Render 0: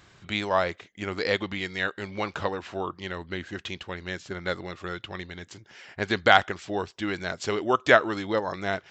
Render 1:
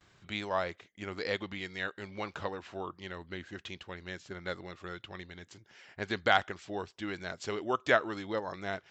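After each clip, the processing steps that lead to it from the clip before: gate with hold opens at -47 dBFS; gain -8 dB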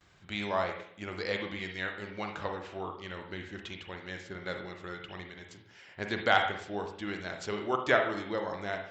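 reverb RT60 0.60 s, pre-delay 39 ms, DRR 3 dB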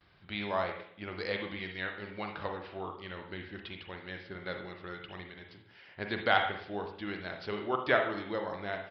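downsampling 11025 Hz; gain -1.5 dB

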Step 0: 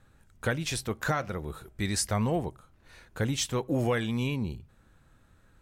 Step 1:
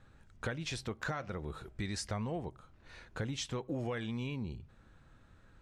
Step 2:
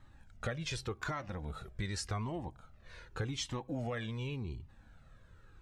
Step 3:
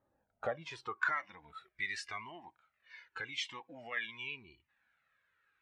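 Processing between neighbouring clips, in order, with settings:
LPF 6000 Hz 12 dB/oct; compressor 3:1, threshold -37 dBFS, peak gain reduction 11 dB
cascading flanger falling 0.87 Hz; gain +4.5 dB
spectral noise reduction 12 dB; band-pass sweep 520 Hz -> 2100 Hz, 0.19–1.28; gain +10 dB

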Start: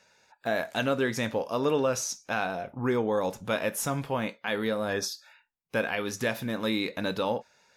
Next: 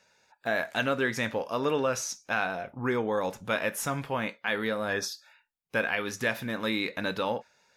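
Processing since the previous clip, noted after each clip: dynamic EQ 1800 Hz, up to +6 dB, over -45 dBFS, Q 0.86; gain -2.5 dB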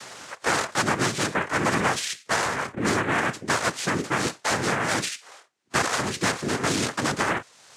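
noise vocoder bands 3; three-band squash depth 70%; gain +4.5 dB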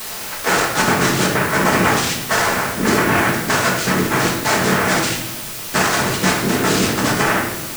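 requantised 6-bit, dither triangular; shoebox room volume 420 m³, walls mixed, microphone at 1.5 m; gain +4 dB

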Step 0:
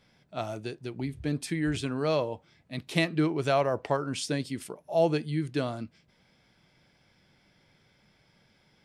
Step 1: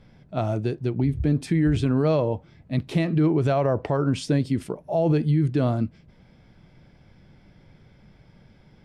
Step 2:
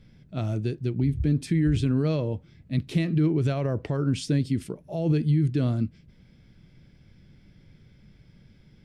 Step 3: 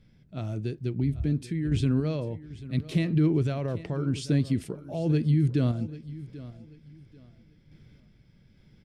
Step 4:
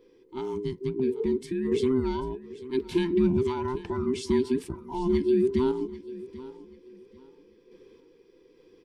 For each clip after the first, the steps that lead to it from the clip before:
tilt -3 dB/oct; limiter -19.5 dBFS, peak gain reduction 10 dB; gain +6 dB
bell 820 Hz -12.5 dB 1.6 oct
random-step tremolo; feedback echo 0.789 s, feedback 27%, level -17 dB
band inversion scrambler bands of 500 Hz

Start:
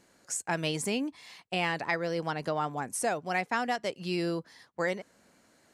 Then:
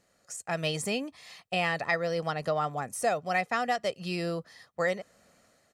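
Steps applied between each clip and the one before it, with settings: de-esser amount 60%; comb 1.6 ms, depth 50%; AGC gain up to 6.5 dB; gain -6 dB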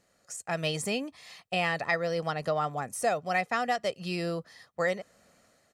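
nothing audible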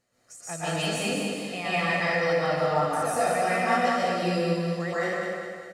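flange 0.81 Hz, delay 7.8 ms, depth 4.5 ms, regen +49%; feedback echo 0.2 s, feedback 47%, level -5 dB; plate-style reverb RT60 1.4 s, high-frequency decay 0.75×, pre-delay 0.11 s, DRR -9.5 dB; gain -2.5 dB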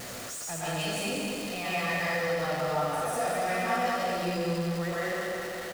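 zero-crossing step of -26.5 dBFS; echo 88 ms -8.5 dB; gain -7.5 dB

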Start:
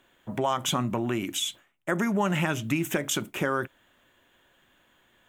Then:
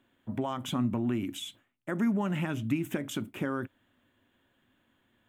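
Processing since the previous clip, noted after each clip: fifteen-band EQ 100 Hz +11 dB, 250 Hz +11 dB, 6300 Hz -6 dB, 16000 Hz -3 dB; gain -9 dB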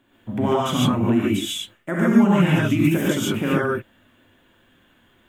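non-linear reverb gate 0.17 s rising, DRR -6.5 dB; gain +6 dB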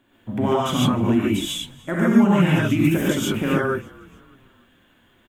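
frequency-shifting echo 0.299 s, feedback 49%, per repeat -51 Hz, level -23 dB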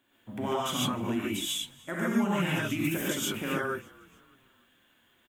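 tilt +2 dB/oct; gain -8 dB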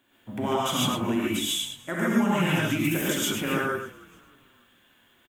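echo 0.106 s -8 dB; gain +4 dB

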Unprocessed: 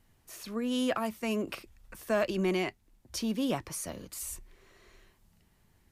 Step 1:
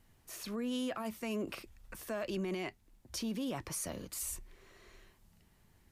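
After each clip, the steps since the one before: limiter -30 dBFS, peak gain reduction 11 dB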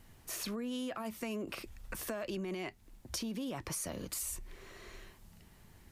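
compressor, threshold -44 dBFS, peak gain reduction 10.5 dB; gain +7.5 dB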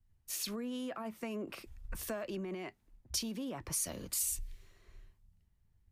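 three-band expander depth 100%; gain -1 dB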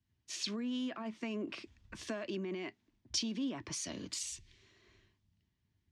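speaker cabinet 130–6300 Hz, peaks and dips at 160 Hz -5 dB, 290 Hz +4 dB, 510 Hz -9 dB, 790 Hz -7 dB, 1300 Hz -6 dB, 3300 Hz +3 dB; gain +2.5 dB

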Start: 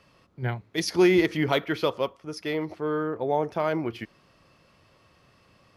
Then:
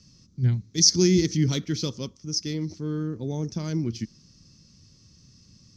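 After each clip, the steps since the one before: EQ curve 220 Hz 0 dB, 700 Hz -28 dB, 2900 Hz -16 dB, 6000 Hz +11 dB, 10000 Hz -17 dB; gain +8.5 dB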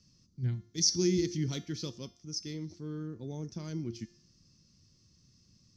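resonator 350 Hz, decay 0.55 s, mix 70%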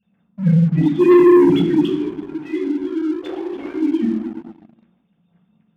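sine-wave speech; reverb RT60 1.2 s, pre-delay 3 ms, DRR -3 dB; sample leveller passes 2; gain +6 dB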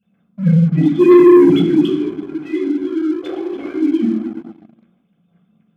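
notch comb 920 Hz; gain +3 dB

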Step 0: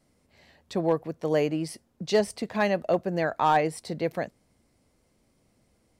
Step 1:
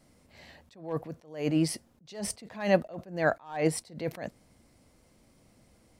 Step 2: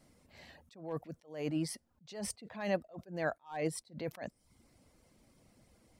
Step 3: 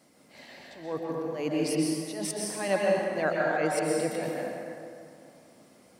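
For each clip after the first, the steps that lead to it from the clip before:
bell 410 Hz -4 dB 0.23 oct; attack slew limiter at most 130 dB/s; gain +5.5 dB
reverb removal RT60 0.54 s; compressor 1.5:1, threshold -38 dBFS, peak gain reduction 7.5 dB; gain -2.5 dB
HPF 220 Hz 12 dB/oct; plate-style reverb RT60 2.5 s, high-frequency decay 0.6×, pre-delay 0.11 s, DRR -3.5 dB; gain +6 dB

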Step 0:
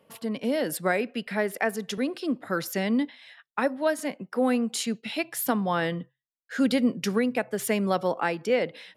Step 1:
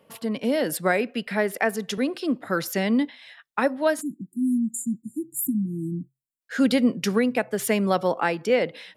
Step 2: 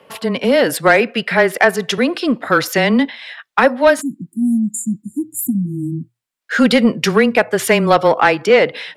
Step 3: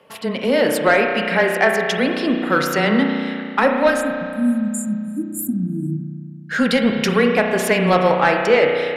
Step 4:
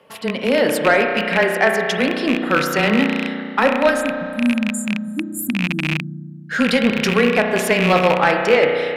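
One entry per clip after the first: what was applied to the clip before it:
spectral delete 4.01–6.41, 350–6900 Hz; gain +3 dB
frequency shift -15 Hz; high shelf 4500 Hz -5.5 dB; overdrive pedal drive 11 dB, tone 6000 Hz, clips at -9.5 dBFS; gain +9 dB
spring tank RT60 2.4 s, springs 33 ms, chirp 80 ms, DRR 2 dB; gain -4.5 dB
rattling part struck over -23 dBFS, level -9 dBFS

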